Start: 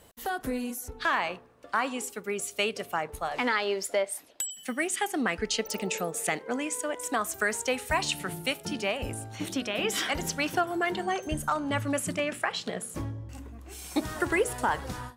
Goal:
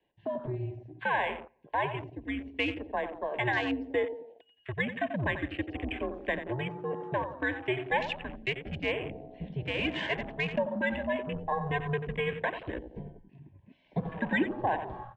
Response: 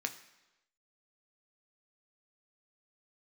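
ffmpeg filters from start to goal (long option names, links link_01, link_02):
-filter_complex "[0:a]lowshelf=frequency=380:gain=-5.5,asplit=2[link_01][link_02];[link_02]adelay=89,lowpass=frequency=2000:poles=1,volume=-8dB,asplit=2[link_03][link_04];[link_04]adelay=89,lowpass=frequency=2000:poles=1,volume=0.5,asplit=2[link_05][link_06];[link_06]adelay=89,lowpass=frequency=2000:poles=1,volume=0.5,asplit=2[link_07][link_08];[link_08]adelay=89,lowpass=frequency=2000:poles=1,volume=0.5,asplit=2[link_09][link_10];[link_10]adelay=89,lowpass=frequency=2000:poles=1,volume=0.5,asplit=2[link_11][link_12];[link_12]adelay=89,lowpass=frequency=2000:poles=1,volume=0.5[link_13];[link_01][link_03][link_05][link_07][link_09][link_11][link_13]amix=inputs=7:normalize=0,acrossover=split=270|1400|2500[link_14][link_15][link_16][link_17];[link_17]alimiter=level_in=2dB:limit=-24dB:level=0:latency=1:release=211,volume=-2dB[link_18];[link_14][link_15][link_16][link_18]amix=inputs=4:normalize=0,highpass=frequency=160:width_type=q:width=0.5412,highpass=frequency=160:width_type=q:width=1.307,lowpass=frequency=3400:width_type=q:width=0.5176,lowpass=frequency=3400:width_type=q:width=0.7071,lowpass=frequency=3400:width_type=q:width=1.932,afreqshift=-130,asuperstop=centerf=1300:order=12:qfactor=3,afwtdn=0.01"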